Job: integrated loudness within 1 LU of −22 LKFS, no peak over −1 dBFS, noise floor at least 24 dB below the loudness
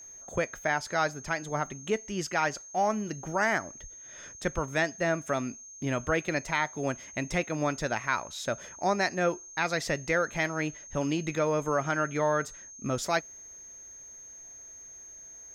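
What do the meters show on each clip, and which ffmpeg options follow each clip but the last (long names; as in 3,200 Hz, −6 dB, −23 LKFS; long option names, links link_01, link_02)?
interfering tone 6,400 Hz; level of the tone −45 dBFS; integrated loudness −30.0 LKFS; sample peak −14.0 dBFS; target loudness −22.0 LKFS
→ -af "bandreject=frequency=6400:width=30"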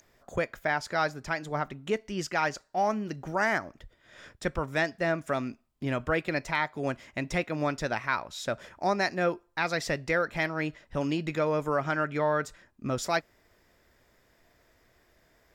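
interfering tone none found; integrated loudness −30.5 LKFS; sample peak −14.0 dBFS; target loudness −22.0 LKFS
→ -af "volume=8.5dB"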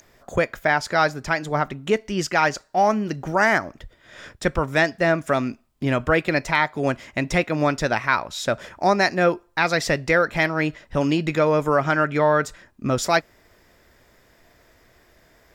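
integrated loudness −22.0 LKFS; sample peak −5.5 dBFS; background noise floor −58 dBFS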